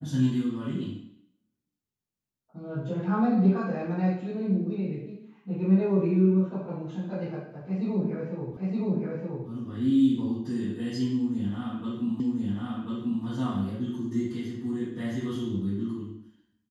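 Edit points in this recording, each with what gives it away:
0:08.57: the same again, the last 0.92 s
0:12.20: the same again, the last 1.04 s

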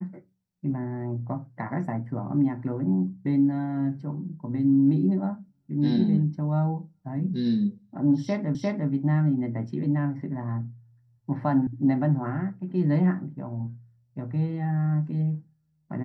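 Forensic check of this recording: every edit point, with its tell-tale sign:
0:08.55: the same again, the last 0.35 s
0:11.67: cut off before it has died away

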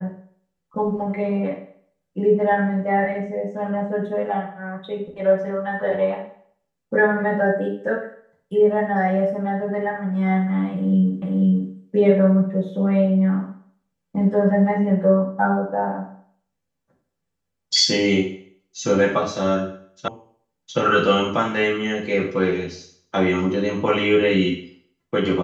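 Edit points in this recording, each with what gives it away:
0:11.22: the same again, the last 0.49 s
0:20.08: cut off before it has died away

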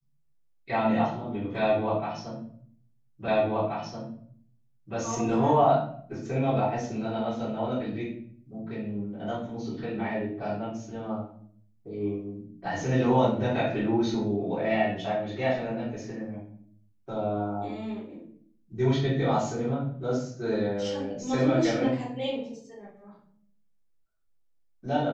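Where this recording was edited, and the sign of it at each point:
0:03.28: the same again, the last 1.68 s

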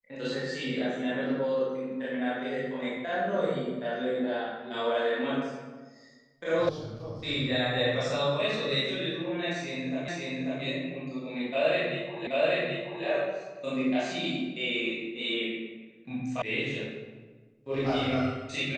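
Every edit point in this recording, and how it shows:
0:06.69: cut off before it has died away
0:10.08: the same again, the last 0.54 s
0:12.27: the same again, the last 0.78 s
0:16.42: cut off before it has died away

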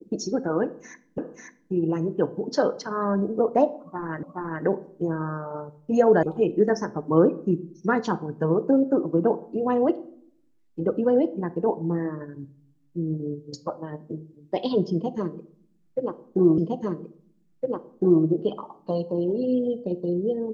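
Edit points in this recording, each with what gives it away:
0:01.18: the same again, the last 0.54 s
0:04.23: the same again, the last 0.42 s
0:06.23: cut off before it has died away
0:16.58: the same again, the last 1.66 s

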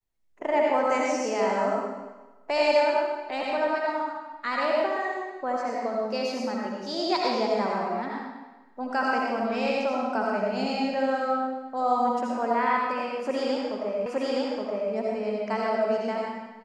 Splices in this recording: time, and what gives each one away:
0:14.06: the same again, the last 0.87 s

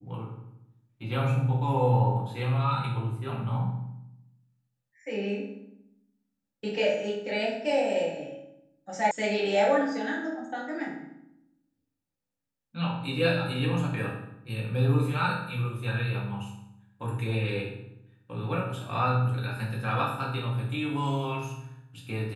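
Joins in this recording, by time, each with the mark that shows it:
0:09.11: cut off before it has died away

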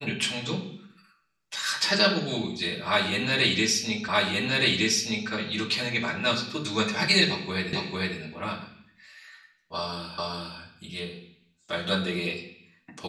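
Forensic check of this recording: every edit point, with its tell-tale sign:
0:04.08: the same again, the last 1.22 s
0:07.73: the same again, the last 0.45 s
0:10.18: the same again, the last 0.41 s

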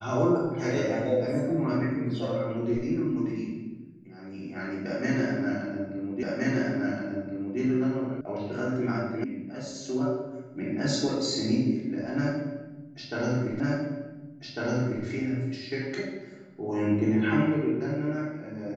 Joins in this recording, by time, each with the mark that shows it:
0:06.23: the same again, the last 1.37 s
0:08.21: cut off before it has died away
0:09.24: cut off before it has died away
0:13.60: the same again, the last 1.45 s

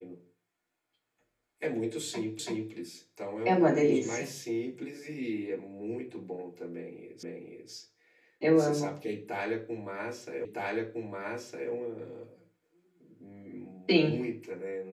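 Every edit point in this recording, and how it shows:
0:02.39: the same again, the last 0.33 s
0:07.23: the same again, the last 0.49 s
0:10.45: the same again, the last 1.26 s

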